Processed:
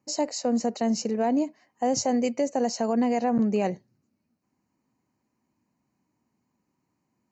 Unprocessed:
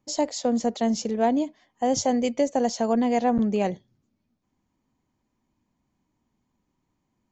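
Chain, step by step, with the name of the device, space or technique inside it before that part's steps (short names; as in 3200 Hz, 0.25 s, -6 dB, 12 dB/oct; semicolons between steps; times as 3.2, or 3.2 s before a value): PA system with an anti-feedback notch (HPF 110 Hz 12 dB/oct; Butterworth band-stop 3400 Hz, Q 3.8; limiter -15.5 dBFS, peak gain reduction 5 dB)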